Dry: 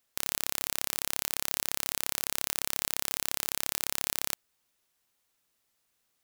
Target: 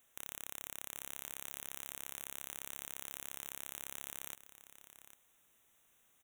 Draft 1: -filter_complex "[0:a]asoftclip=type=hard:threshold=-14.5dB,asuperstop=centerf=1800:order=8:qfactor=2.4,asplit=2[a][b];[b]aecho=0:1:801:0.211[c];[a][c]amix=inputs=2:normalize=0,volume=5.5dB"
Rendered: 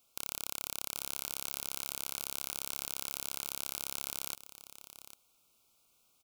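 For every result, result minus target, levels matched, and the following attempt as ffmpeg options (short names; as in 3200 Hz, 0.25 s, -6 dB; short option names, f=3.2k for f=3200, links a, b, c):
hard clip: distortion -8 dB; 2000 Hz band -4.5 dB
-filter_complex "[0:a]asoftclip=type=hard:threshold=-21dB,asuperstop=centerf=1800:order=8:qfactor=2.4,asplit=2[a][b];[b]aecho=0:1:801:0.211[c];[a][c]amix=inputs=2:normalize=0,volume=5.5dB"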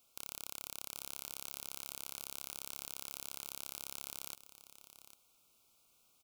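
2000 Hz band -4.5 dB
-filter_complex "[0:a]asoftclip=type=hard:threshold=-21dB,asuperstop=centerf=4700:order=8:qfactor=2.4,asplit=2[a][b];[b]aecho=0:1:801:0.211[c];[a][c]amix=inputs=2:normalize=0,volume=5.5dB"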